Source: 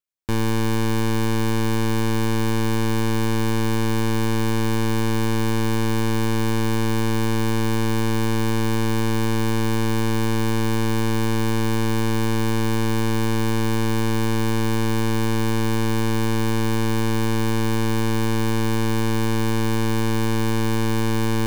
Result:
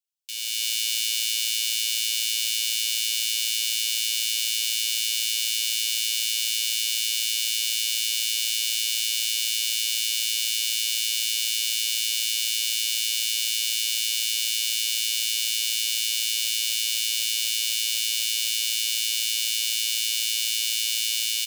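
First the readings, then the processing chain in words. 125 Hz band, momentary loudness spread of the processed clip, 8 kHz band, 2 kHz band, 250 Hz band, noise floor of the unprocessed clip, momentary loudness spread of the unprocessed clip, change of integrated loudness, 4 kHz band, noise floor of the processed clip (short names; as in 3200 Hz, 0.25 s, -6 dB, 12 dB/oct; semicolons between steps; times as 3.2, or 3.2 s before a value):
under -40 dB, 0 LU, +11.5 dB, -3.0 dB, under -40 dB, -19 dBFS, 0 LU, 0.0 dB, +11.5 dB, -26 dBFS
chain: elliptic high-pass 2700 Hz, stop band 60 dB; comb 3.1 ms, depth 80%; AGC gain up to 9.5 dB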